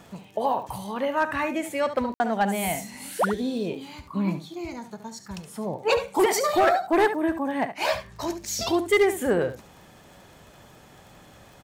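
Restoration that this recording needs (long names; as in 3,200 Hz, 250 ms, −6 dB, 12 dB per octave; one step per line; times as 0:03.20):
clipped peaks rebuilt −13.5 dBFS
click removal
ambience match 0:02.14–0:02.20
echo removal 71 ms −11 dB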